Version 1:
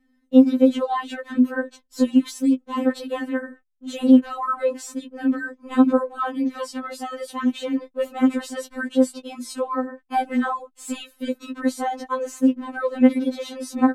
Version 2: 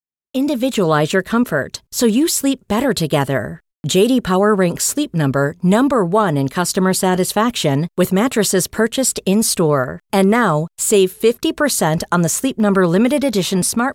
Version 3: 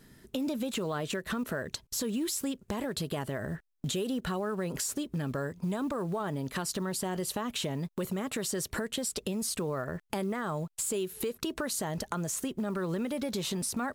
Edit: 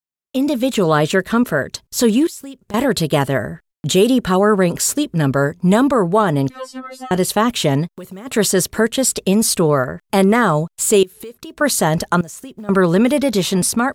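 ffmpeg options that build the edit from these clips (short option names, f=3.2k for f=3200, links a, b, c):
-filter_complex "[2:a]asplit=4[a][b][c][d];[1:a]asplit=6[e][f][g][h][i][j];[e]atrim=end=2.272[k];[a]atrim=start=2.268:end=2.742[l];[f]atrim=start=2.738:end=6.502[m];[0:a]atrim=start=6.498:end=7.112[n];[g]atrim=start=7.108:end=7.91[o];[b]atrim=start=7.81:end=8.35[p];[h]atrim=start=8.25:end=11.032[q];[c]atrim=start=11.028:end=11.612[r];[i]atrim=start=11.608:end=12.212[s];[d]atrim=start=12.208:end=12.692[t];[j]atrim=start=12.688[u];[k][l]acrossfade=d=0.004:c1=hsin:c2=hsin[v];[v][m]acrossfade=d=0.004:c1=hsin:c2=hsin[w];[w][n]acrossfade=d=0.004:c1=hsin:c2=hsin[x];[x][o]acrossfade=d=0.004:c1=hsin:c2=hsin[y];[y][p]acrossfade=d=0.1:c1=tri:c2=tri[z];[z][q]acrossfade=d=0.1:c1=tri:c2=tri[aa];[aa][r]acrossfade=d=0.004:c1=hsin:c2=hsin[ab];[ab][s]acrossfade=d=0.004:c1=hsin:c2=hsin[ac];[ac][t]acrossfade=d=0.004:c1=hsin:c2=hsin[ad];[ad][u]acrossfade=d=0.004:c1=hsin:c2=hsin"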